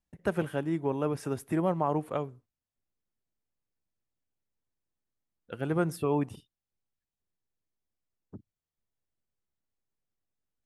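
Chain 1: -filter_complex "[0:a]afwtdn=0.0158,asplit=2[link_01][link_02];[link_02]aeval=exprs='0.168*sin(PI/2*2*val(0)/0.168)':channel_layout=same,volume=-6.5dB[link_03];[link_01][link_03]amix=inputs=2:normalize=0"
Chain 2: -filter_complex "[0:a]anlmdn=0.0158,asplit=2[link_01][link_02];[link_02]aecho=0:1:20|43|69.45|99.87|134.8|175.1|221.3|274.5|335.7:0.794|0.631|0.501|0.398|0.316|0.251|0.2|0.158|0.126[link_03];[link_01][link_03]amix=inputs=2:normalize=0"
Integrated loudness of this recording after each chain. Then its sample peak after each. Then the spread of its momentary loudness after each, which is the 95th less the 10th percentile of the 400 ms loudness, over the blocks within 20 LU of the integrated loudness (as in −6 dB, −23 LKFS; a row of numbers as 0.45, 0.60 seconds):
−25.0, −27.0 LKFS; −15.0, −9.0 dBFS; 8, 11 LU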